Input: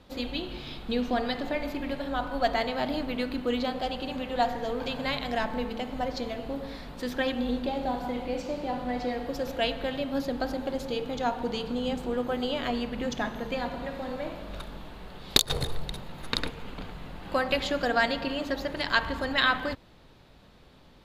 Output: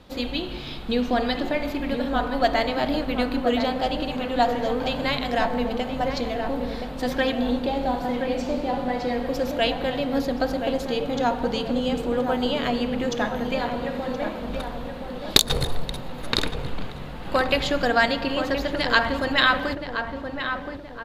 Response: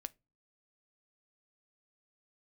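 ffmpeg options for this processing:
-filter_complex "[0:a]asplit=2[a][b];[b]adelay=1023,lowpass=f=1.5k:p=1,volume=-6dB,asplit=2[c][d];[d]adelay=1023,lowpass=f=1.5k:p=1,volume=0.47,asplit=2[e][f];[f]adelay=1023,lowpass=f=1.5k:p=1,volume=0.47,asplit=2[g][h];[h]adelay=1023,lowpass=f=1.5k:p=1,volume=0.47,asplit=2[i][j];[j]adelay=1023,lowpass=f=1.5k:p=1,volume=0.47,asplit=2[k][l];[l]adelay=1023,lowpass=f=1.5k:p=1,volume=0.47[m];[a][c][e][g][i][k][m]amix=inputs=7:normalize=0,asplit=2[n][o];[1:a]atrim=start_sample=2205[p];[o][p]afir=irnorm=-1:irlink=0,volume=-4dB[q];[n][q]amix=inputs=2:normalize=0,volume=2dB"

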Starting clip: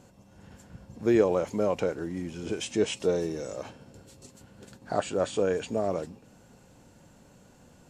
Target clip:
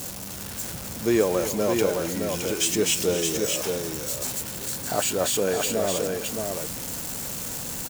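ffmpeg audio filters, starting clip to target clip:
-filter_complex "[0:a]aeval=exprs='val(0)+0.5*0.0158*sgn(val(0))':c=same,crystalizer=i=3.5:c=0,asplit=2[a][b];[b]aecho=0:1:263|617:0.251|0.596[c];[a][c]amix=inputs=2:normalize=0"

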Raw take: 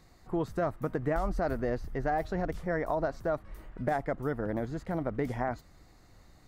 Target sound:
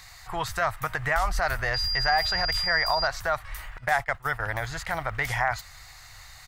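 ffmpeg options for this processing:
-filter_complex "[0:a]asettb=1/sr,asplit=3[a][b][c];[a]atrim=end=3.784[d];[b]atrim=start=3.78:end=4.52,asetpts=PTS-STARTPTS,afade=t=in:d=0.004:c=qsin,afade=t=out:st=0.736:d=0.004:c=qsin,agate=range=-17dB:threshold=-33dB:ratio=16:detection=peak[e];[c]atrim=start=4.516[f];[d][e]acrossfade=d=0.004:c1=hsin:c2=qsin[g];[g][f]acrossfade=d=0.004:c1=qsin:c2=hsin,firequalizer=gain_entry='entry(110,0);entry(230,-23);entry(770,4);entry(1900,13)':delay=0.05:min_phase=1,asettb=1/sr,asplit=3[h][i][j];[h]atrim=end=1.744[k];[i]atrim=start=1.74:end=3.07,asetpts=PTS-STARTPTS,afade=t=in:d=0.004:c=qsin,afade=t=out:st=1.326:d=0.004:c=qsin,aeval=exprs='val(0)+0.0251*sin(2*PI*4800*n/s)':c=same[l];[j]atrim=start=3.066[m];[k][l]acrossfade=d=0.004:c1=hsin:c2=qsin[n];[n][m]acrossfade=d=0.004:c1=qsin:c2=hsin,asplit=2[o][p];[p]alimiter=level_in=0.5dB:limit=-24dB:level=0:latency=1,volume=-0.5dB,volume=1dB[q];[o][q]amix=inputs=2:normalize=0"

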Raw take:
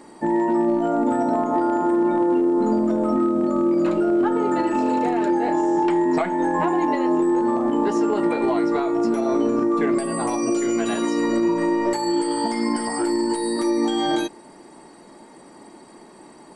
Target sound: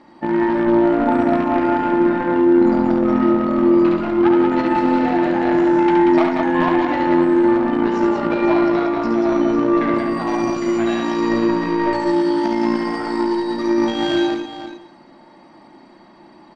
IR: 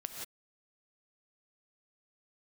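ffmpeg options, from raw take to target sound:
-filter_complex "[0:a]lowpass=f=4.7k:w=0.5412,lowpass=f=4.7k:w=1.3066,equalizer=f=430:w=6.1:g=-13,aeval=exprs='0.282*(cos(1*acos(clip(val(0)/0.282,-1,1)))-cos(1*PI/2))+0.0562*(cos(3*acos(clip(val(0)/0.282,-1,1)))-cos(3*PI/2))':c=same,aecho=1:1:44|70|185|501:0.126|0.631|0.596|0.282,asplit=2[a][b];[1:a]atrim=start_sample=2205[c];[b][c]afir=irnorm=-1:irlink=0,volume=-7.5dB[d];[a][d]amix=inputs=2:normalize=0,volume=3.5dB"

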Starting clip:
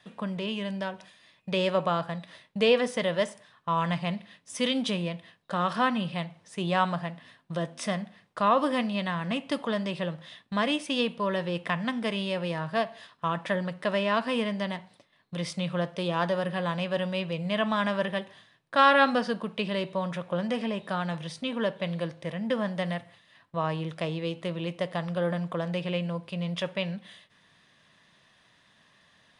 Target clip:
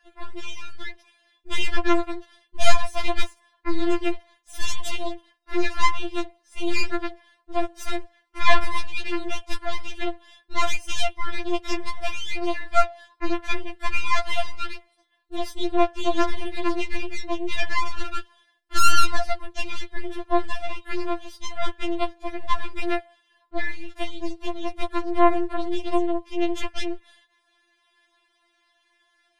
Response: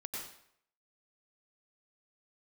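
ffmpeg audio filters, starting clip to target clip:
-af "aeval=exprs='0.473*(cos(1*acos(clip(val(0)/0.473,-1,1)))-cos(1*PI/2))+0.237*(cos(8*acos(clip(val(0)/0.473,-1,1)))-cos(8*PI/2))':c=same,afftfilt=real='re*4*eq(mod(b,16),0)':imag='im*4*eq(mod(b,16),0)':win_size=2048:overlap=0.75,volume=-2dB"

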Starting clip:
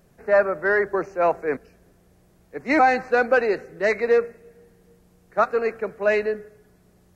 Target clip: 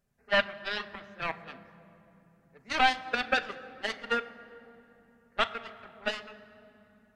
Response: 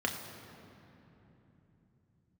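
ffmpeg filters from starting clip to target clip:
-filter_complex "[0:a]aeval=exprs='0.447*(cos(1*acos(clip(val(0)/0.447,-1,1)))-cos(1*PI/2))+0.158*(cos(3*acos(clip(val(0)/0.447,-1,1)))-cos(3*PI/2))+0.00447*(cos(7*acos(clip(val(0)/0.447,-1,1)))-cos(7*PI/2))':c=same,equalizer=f=400:w=0.83:g=-7.5,asplit=2[a][b];[1:a]atrim=start_sample=2205,adelay=5[c];[b][c]afir=irnorm=-1:irlink=0,volume=-14.5dB[d];[a][d]amix=inputs=2:normalize=0"

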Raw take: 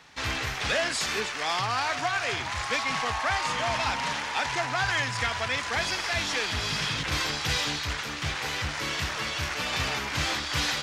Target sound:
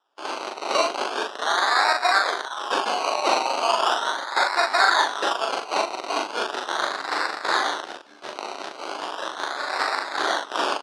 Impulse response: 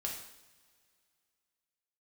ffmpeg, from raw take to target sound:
-filter_complex "[0:a]afwtdn=0.0316,acrusher=samples=20:mix=1:aa=0.000001:lfo=1:lforange=12:lforate=0.38,aeval=exprs='0.158*(cos(1*acos(clip(val(0)/0.158,-1,1)))-cos(1*PI/2))+0.0158*(cos(7*acos(clip(val(0)/0.158,-1,1)))-cos(7*PI/2))':c=same,highpass=f=400:w=0.5412,highpass=f=400:w=1.3066,equalizer=f=490:t=q:w=4:g=-7,equalizer=f=1.5k:t=q:w=4:g=3,equalizer=f=2.3k:t=q:w=4:g=-4,equalizer=f=3.8k:t=q:w=4:g=4,equalizer=f=7.3k:t=q:w=4:g=-8,lowpass=f=7.7k:w=0.5412,lowpass=f=7.7k:w=1.3066,asplit=2[a][b];[b]adelay=40,volume=-3dB[c];[a][c]amix=inputs=2:normalize=0,volume=8.5dB"

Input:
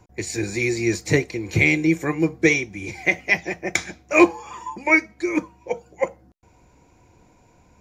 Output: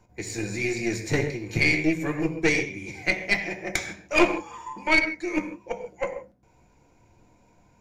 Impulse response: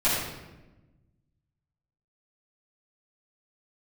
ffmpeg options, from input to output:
-filter_complex "[0:a]asplit=2[a][b];[1:a]atrim=start_sample=2205,afade=t=out:st=0.2:d=0.01,atrim=end_sample=9261,asetrate=39249,aresample=44100[c];[b][c]afir=irnorm=-1:irlink=0,volume=-17.5dB[d];[a][d]amix=inputs=2:normalize=0,flanger=delay=4.4:depth=4.6:regen=-77:speed=1.2:shape=triangular,aeval=exprs='(tanh(3.98*val(0)+0.75)-tanh(0.75))/3.98':c=same,volume=2dB"

